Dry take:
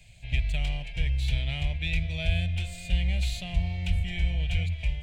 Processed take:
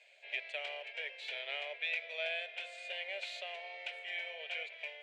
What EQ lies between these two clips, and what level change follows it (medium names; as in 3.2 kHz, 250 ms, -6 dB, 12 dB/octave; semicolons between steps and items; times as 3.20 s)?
rippled Chebyshev high-pass 400 Hz, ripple 6 dB; distance through air 64 m; treble shelf 4.1 kHz -10 dB; +4.0 dB